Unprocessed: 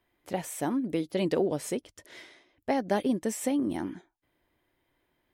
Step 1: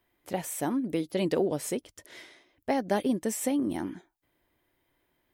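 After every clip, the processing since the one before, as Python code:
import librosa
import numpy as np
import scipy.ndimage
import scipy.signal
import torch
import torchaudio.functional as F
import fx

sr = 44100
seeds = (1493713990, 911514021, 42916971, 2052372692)

y = fx.high_shelf(x, sr, hz=11000.0, db=8.0)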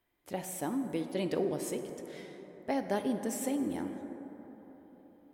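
y = fx.rev_plate(x, sr, seeds[0], rt60_s=4.4, hf_ratio=0.3, predelay_ms=0, drr_db=6.5)
y = F.gain(torch.from_numpy(y), -5.5).numpy()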